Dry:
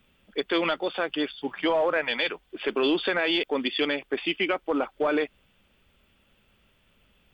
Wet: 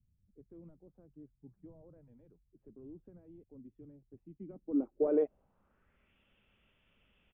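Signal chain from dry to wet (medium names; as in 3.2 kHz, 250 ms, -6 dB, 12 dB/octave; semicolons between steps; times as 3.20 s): resampled via 8 kHz; low-pass sweep 110 Hz -> 2.9 kHz, 4.24–6.19 s; tape noise reduction on one side only decoder only; trim -8 dB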